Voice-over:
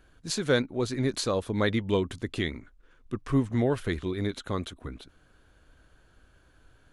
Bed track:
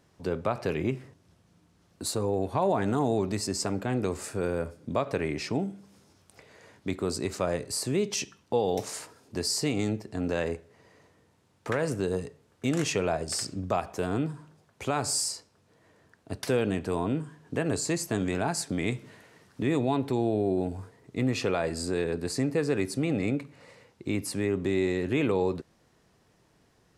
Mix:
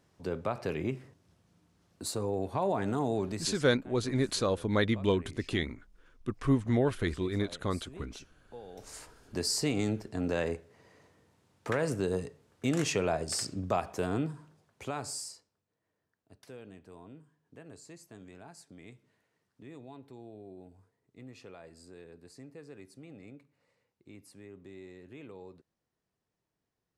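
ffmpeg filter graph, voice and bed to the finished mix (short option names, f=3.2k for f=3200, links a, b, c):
-filter_complex "[0:a]adelay=3150,volume=-1.5dB[a];[1:a]volume=14.5dB,afade=t=out:st=3.27:d=0.37:silence=0.149624,afade=t=in:st=8.75:d=0.53:silence=0.112202,afade=t=out:st=14.02:d=1.63:silence=0.1[b];[a][b]amix=inputs=2:normalize=0"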